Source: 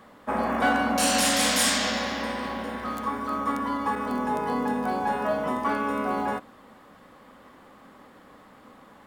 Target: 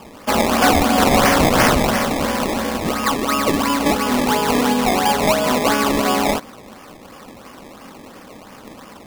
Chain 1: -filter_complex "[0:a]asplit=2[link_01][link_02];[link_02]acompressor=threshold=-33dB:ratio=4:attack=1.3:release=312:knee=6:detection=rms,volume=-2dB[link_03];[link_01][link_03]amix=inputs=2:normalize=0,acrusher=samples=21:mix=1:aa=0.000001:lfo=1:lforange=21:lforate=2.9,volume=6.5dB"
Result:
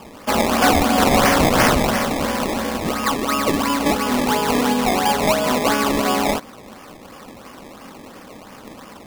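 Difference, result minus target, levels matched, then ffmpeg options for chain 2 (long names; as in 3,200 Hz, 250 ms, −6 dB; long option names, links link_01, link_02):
downward compressor: peak gain reduction +5 dB
-filter_complex "[0:a]asplit=2[link_01][link_02];[link_02]acompressor=threshold=-26dB:ratio=4:attack=1.3:release=312:knee=6:detection=rms,volume=-2dB[link_03];[link_01][link_03]amix=inputs=2:normalize=0,acrusher=samples=21:mix=1:aa=0.000001:lfo=1:lforange=21:lforate=2.9,volume=6.5dB"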